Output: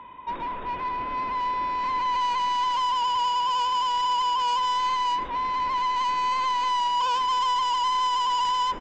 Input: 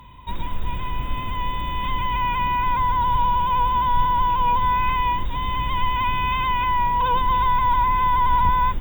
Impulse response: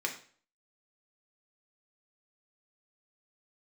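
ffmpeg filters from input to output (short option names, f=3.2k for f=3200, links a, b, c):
-filter_complex "[0:a]acrossover=split=270 2400:gain=0.0631 1 0.0891[a][b][c];[a][b][c]amix=inputs=3:normalize=0,aresample=16000,asoftclip=type=tanh:threshold=-28dB,aresample=44100,asplit=2[d][e];[e]adelay=116.6,volume=-18dB,highshelf=f=4k:g=-2.62[f];[d][f]amix=inputs=2:normalize=0,volume=5dB"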